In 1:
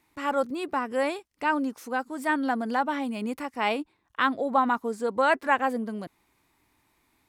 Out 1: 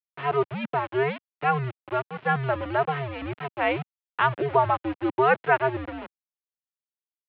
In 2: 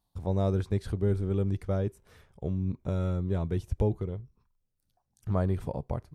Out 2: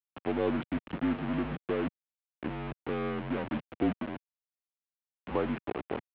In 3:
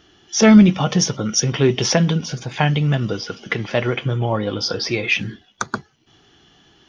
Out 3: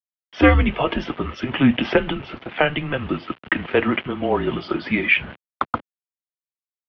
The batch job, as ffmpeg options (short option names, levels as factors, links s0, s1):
-af "aeval=exprs='val(0)*gte(abs(val(0)),0.0251)':c=same,highpass=190,highpass=f=270:t=q:w=0.5412,highpass=f=270:t=q:w=1.307,lowpass=f=3200:t=q:w=0.5176,lowpass=f=3200:t=q:w=0.7071,lowpass=f=3200:t=q:w=1.932,afreqshift=-140,volume=1.33"